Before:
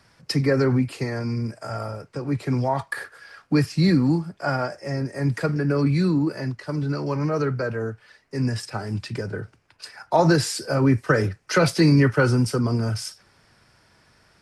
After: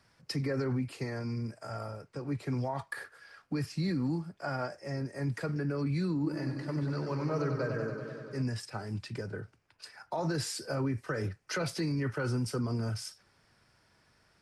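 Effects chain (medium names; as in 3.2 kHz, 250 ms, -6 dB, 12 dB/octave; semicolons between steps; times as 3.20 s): peak limiter -15.5 dBFS, peak gain reduction 8.5 dB; 6.14–8.42 s: modulated delay 96 ms, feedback 79%, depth 70 cents, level -7 dB; trim -9 dB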